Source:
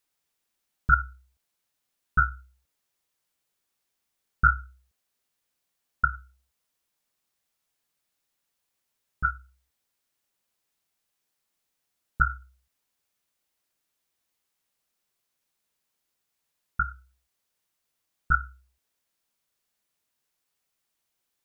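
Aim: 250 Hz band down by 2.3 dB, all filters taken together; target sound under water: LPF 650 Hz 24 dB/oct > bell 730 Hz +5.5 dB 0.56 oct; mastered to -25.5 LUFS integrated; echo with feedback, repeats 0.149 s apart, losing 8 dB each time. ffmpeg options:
-af "lowpass=f=650:w=0.5412,lowpass=f=650:w=1.3066,equalizer=f=250:t=o:g=-5.5,equalizer=f=730:t=o:w=0.56:g=5.5,aecho=1:1:149|298|447|596|745:0.398|0.159|0.0637|0.0255|0.0102,volume=12dB"

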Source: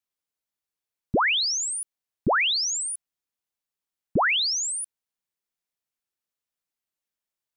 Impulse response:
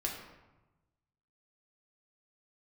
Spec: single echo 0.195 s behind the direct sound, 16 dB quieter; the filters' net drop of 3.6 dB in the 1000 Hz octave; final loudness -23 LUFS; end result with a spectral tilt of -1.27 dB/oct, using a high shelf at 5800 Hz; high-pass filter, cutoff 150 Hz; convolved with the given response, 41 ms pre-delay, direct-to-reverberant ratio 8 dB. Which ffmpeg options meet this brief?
-filter_complex "[0:a]highpass=150,equalizer=f=1k:t=o:g=-4.5,highshelf=f=5.8k:g=-6.5,aecho=1:1:195:0.158,asplit=2[a][b];[1:a]atrim=start_sample=2205,adelay=41[c];[b][c]afir=irnorm=-1:irlink=0,volume=-11dB[d];[a][d]amix=inputs=2:normalize=0,volume=2.5dB"

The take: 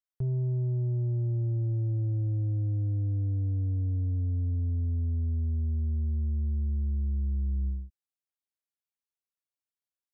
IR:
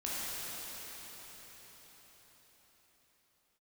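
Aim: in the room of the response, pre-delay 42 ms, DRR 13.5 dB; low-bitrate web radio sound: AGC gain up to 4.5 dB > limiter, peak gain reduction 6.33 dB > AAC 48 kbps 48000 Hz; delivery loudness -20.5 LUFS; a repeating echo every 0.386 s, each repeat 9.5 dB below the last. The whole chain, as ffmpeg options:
-filter_complex "[0:a]aecho=1:1:386|772|1158|1544:0.335|0.111|0.0365|0.012,asplit=2[a][b];[1:a]atrim=start_sample=2205,adelay=42[c];[b][c]afir=irnorm=-1:irlink=0,volume=-19dB[d];[a][d]amix=inputs=2:normalize=0,dynaudnorm=m=4.5dB,alimiter=level_in=3dB:limit=-24dB:level=0:latency=1,volume=-3dB,volume=12dB" -ar 48000 -c:a aac -b:a 48k

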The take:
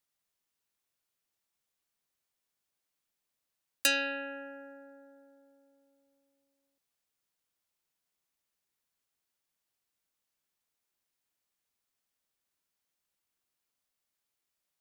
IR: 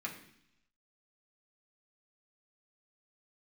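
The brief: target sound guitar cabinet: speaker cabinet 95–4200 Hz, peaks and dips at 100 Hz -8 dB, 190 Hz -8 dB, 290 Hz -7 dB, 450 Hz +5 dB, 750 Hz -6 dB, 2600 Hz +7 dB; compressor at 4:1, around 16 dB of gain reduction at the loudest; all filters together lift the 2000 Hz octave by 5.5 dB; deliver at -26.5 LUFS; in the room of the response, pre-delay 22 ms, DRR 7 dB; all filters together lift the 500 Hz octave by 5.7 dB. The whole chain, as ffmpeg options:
-filter_complex "[0:a]equalizer=f=500:t=o:g=6,equalizer=f=2k:t=o:g=3,acompressor=threshold=-42dB:ratio=4,asplit=2[a][b];[1:a]atrim=start_sample=2205,adelay=22[c];[b][c]afir=irnorm=-1:irlink=0,volume=-8.5dB[d];[a][d]amix=inputs=2:normalize=0,highpass=95,equalizer=f=100:t=q:w=4:g=-8,equalizer=f=190:t=q:w=4:g=-8,equalizer=f=290:t=q:w=4:g=-7,equalizer=f=450:t=q:w=4:g=5,equalizer=f=750:t=q:w=4:g=-6,equalizer=f=2.6k:t=q:w=4:g=7,lowpass=f=4.2k:w=0.5412,lowpass=f=4.2k:w=1.3066,volume=16.5dB"

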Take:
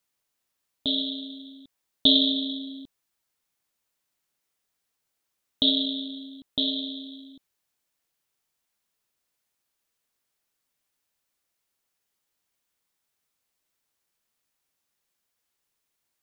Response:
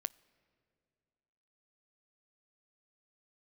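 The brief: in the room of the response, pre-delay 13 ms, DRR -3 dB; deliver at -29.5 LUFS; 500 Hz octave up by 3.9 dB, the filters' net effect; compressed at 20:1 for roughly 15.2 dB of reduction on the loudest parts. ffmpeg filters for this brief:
-filter_complex "[0:a]equalizer=f=500:t=o:g=5,acompressor=threshold=-28dB:ratio=20,asplit=2[a][b];[1:a]atrim=start_sample=2205,adelay=13[c];[b][c]afir=irnorm=-1:irlink=0,volume=4.5dB[d];[a][d]amix=inputs=2:normalize=0,volume=0.5dB"

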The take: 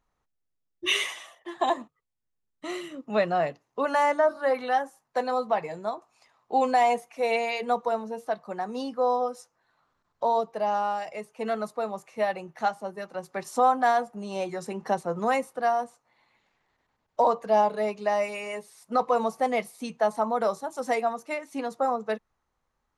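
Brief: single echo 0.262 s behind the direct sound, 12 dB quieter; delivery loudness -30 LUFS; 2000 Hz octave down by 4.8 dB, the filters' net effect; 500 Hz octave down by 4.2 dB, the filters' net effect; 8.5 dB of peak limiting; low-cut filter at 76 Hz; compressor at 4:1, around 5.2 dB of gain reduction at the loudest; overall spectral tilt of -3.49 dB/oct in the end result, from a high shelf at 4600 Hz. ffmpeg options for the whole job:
-af "highpass=76,equalizer=f=500:t=o:g=-5,equalizer=f=2k:t=o:g=-4,highshelf=f=4.6k:g=-9,acompressor=threshold=-26dB:ratio=4,alimiter=level_in=1.5dB:limit=-24dB:level=0:latency=1,volume=-1.5dB,aecho=1:1:262:0.251,volume=6.5dB"

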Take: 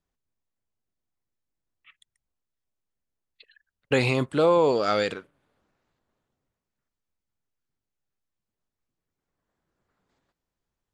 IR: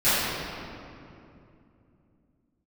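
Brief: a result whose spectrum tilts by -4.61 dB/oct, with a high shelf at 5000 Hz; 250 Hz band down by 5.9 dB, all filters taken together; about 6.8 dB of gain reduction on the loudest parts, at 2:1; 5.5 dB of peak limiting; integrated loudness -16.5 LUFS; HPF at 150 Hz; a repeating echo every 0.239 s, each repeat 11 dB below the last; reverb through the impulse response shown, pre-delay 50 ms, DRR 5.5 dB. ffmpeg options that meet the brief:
-filter_complex "[0:a]highpass=150,equalizer=f=250:t=o:g=-7.5,highshelf=f=5k:g=5.5,acompressor=threshold=-30dB:ratio=2,alimiter=limit=-21.5dB:level=0:latency=1,aecho=1:1:239|478|717:0.282|0.0789|0.0221,asplit=2[a][b];[1:a]atrim=start_sample=2205,adelay=50[c];[b][c]afir=irnorm=-1:irlink=0,volume=-24.5dB[d];[a][d]amix=inputs=2:normalize=0,volume=15dB"

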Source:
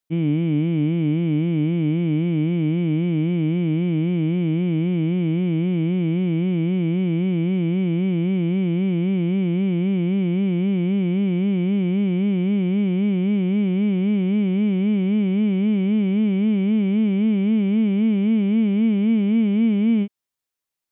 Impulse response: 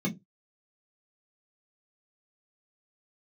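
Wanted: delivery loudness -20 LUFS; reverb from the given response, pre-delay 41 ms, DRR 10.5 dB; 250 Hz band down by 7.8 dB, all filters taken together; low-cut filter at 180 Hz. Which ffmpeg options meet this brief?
-filter_complex "[0:a]highpass=180,equalizer=f=250:t=o:g=-8.5,asplit=2[a][b];[1:a]atrim=start_sample=2205,adelay=41[c];[b][c]afir=irnorm=-1:irlink=0,volume=-16dB[d];[a][d]amix=inputs=2:normalize=0"

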